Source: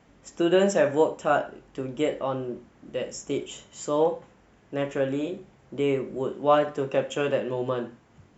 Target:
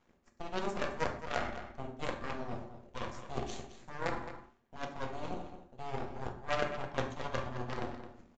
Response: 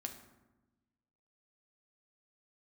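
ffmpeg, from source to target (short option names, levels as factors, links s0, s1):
-filter_complex "[0:a]aeval=exprs='if(lt(val(0),0),0.447*val(0),val(0))':c=same,areverse,acompressor=threshold=0.01:ratio=5,areverse,aeval=exprs='0.0335*(cos(1*acos(clip(val(0)/0.0335,-1,1)))-cos(1*PI/2))+0.015*(cos(4*acos(clip(val(0)/0.0335,-1,1)))-cos(4*PI/2))+0.00422*(cos(7*acos(clip(val(0)/0.0335,-1,1)))-cos(7*PI/2))':c=same,asplit=2[s0][s1];[s1]acrusher=samples=9:mix=1:aa=0.000001:lfo=1:lforange=9:lforate=0.41,volume=0.282[s2];[s0][s2]amix=inputs=2:normalize=0,asplit=2[s3][s4];[s4]adelay=215.7,volume=0.282,highshelf=f=4000:g=-4.85[s5];[s3][s5]amix=inputs=2:normalize=0[s6];[1:a]atrim=start_sample=2205,atrim=end_sample=6615[s7];[s6][s7]afir=irnorm=-1:irlink=0,aresample=16000,aresample=44100,volume=3.35"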